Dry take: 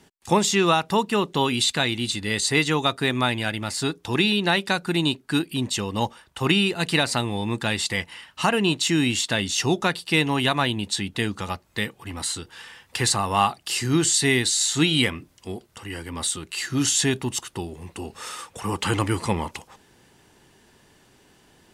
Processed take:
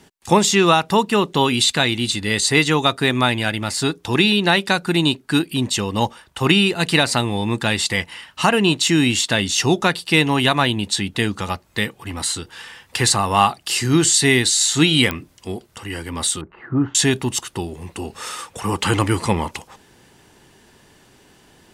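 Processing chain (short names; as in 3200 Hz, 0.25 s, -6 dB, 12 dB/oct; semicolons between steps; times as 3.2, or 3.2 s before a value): 16.41–16.95 LPF 1300 Hz 24 dB/oct; pops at 15.11, -12 dBFS; gain +5 dB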